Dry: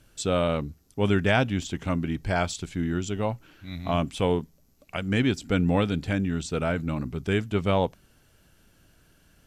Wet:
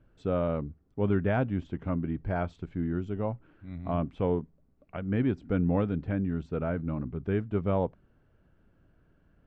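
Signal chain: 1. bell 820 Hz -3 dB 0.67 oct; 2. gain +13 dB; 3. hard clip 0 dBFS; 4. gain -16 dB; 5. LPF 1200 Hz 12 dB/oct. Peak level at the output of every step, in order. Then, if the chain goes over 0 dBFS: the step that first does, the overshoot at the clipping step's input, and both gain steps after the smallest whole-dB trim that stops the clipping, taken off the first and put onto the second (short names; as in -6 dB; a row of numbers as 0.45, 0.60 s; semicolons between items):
-9.5, +3.5, 0.0, -16.0, -16.0 dBFS; step 2, 3.5 dB; step 2 +9 dB, step 4 -12 dB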